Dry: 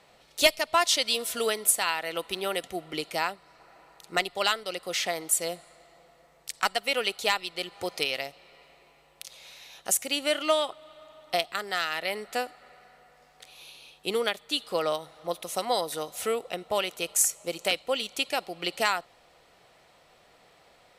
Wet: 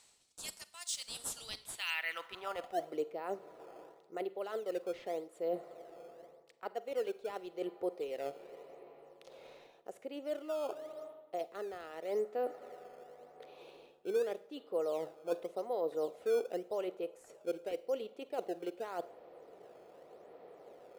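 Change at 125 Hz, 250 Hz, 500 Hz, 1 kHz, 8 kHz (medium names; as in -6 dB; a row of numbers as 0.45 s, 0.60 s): under -10 dB, -6.5 dB, -5.5 dB, -13.5 dB, under -15 dB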